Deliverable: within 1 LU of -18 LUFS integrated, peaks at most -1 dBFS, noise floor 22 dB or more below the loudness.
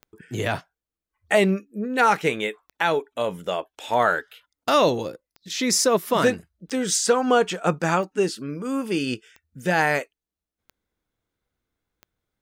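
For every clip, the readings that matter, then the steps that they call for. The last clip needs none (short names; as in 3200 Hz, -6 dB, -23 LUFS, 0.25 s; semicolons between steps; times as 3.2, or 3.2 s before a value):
clicks 10; loudness -23.0 LUFS; peak -7.0 dBFS; loudness target -18.0 LUFS
-> de-click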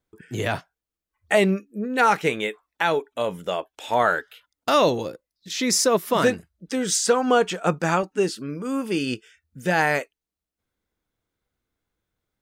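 clicks 0; loudness -23.0 LUFS; peak -7.0 dBFS; loudness target -18.0 LUFS
-> gain +5 dB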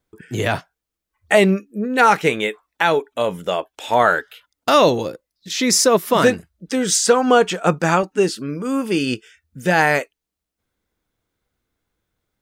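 loudness -18.0 LUFS; peak -2.0 dBFS; noise floor -83 dBFS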